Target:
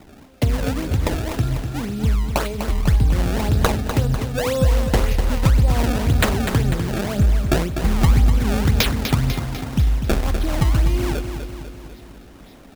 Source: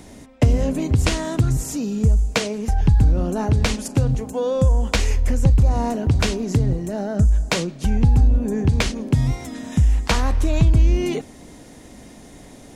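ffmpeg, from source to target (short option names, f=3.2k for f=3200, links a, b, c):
-filter_complex "[0:a]dynaudnorm=f=200:g=31:m=11.5dB,lowpass=f=4k:t=q:w=3.4,acrusher=samples=25:mix=1:aa=0.000001:lfo=1:lforange=40:lforate=1.9,asplit=2[a][b];[b]aecho=0:1:248|496|744|992|1240|1488|1736:0.398|0.219|0.12|0.0662|0.0364|0.02|0.011[c];[a][c]amix=inputs=2:normalize=0,volume=-3.5dB"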